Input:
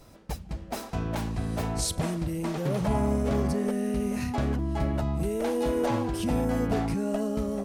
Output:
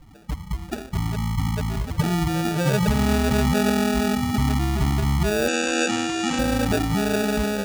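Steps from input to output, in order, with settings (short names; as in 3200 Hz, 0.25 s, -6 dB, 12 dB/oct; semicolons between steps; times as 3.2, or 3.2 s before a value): loudest bins only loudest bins 8; on a send at -14 dB: reverb RT60 1.9 s, pre-delay 7 ms; on the sum: sample-and-hold 42×; 5.48–6.39 speaker cabinet 260–8300 Hz, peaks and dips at 570 Hz -10 dB, 2800 Hz +6 dB, 6900 Hz +8 dB; gain +7.5 dB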